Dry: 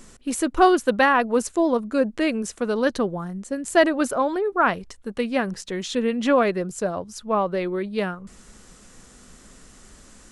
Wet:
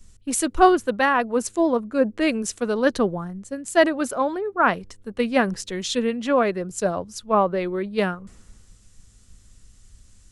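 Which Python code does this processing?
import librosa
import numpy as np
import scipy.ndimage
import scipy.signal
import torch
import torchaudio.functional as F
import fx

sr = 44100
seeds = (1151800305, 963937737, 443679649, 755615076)

y = fx.rider(x, sr, range_db=3, speed_s=0.5)
y = fx.dmg_buzz(y, sr, base_hz=100.0, harmonics=5, level_db=-57.0, tilt_db=-5, odd_only=False)
y = fx.band_widen(y, sr, depth_pct=70)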